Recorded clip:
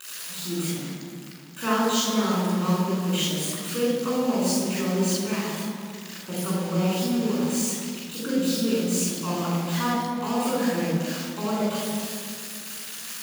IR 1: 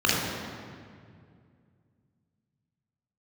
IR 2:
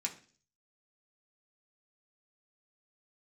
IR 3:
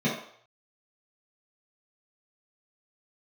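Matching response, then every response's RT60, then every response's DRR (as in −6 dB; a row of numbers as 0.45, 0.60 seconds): 1; 2.2, 0.45, 0.60 seconds; −5.5, −1.0, −9.0 decibels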